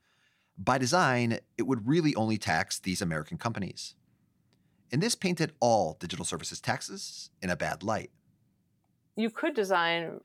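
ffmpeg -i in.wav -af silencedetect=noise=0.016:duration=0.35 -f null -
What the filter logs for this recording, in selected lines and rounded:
silence_start: 0.00
silence_end: 0.59 | silence_duration: 0.59
silence_start: 3.88
silence_end: 4.93 | silence_duration: 1.05
silence_start: 8.05
silence_end: 9.18 | silence_duration: 1.13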